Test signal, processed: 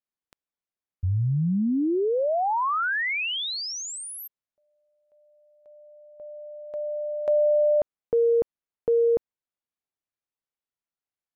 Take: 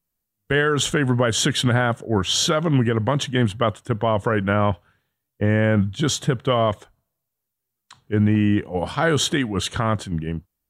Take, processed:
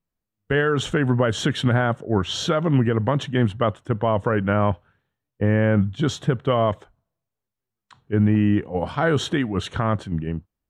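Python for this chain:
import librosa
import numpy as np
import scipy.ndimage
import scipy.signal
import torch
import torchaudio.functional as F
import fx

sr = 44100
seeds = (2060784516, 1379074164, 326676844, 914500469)

y = fx.lowpass(x, sr, hz=1900.0, slope=6)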